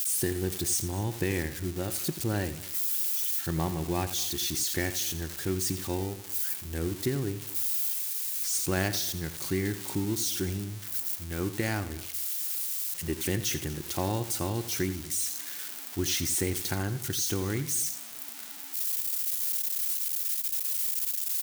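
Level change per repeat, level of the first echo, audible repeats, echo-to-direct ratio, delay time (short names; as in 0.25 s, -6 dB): no steady repeat, -13.0 dB, 3, -12.5 dB, 86 ms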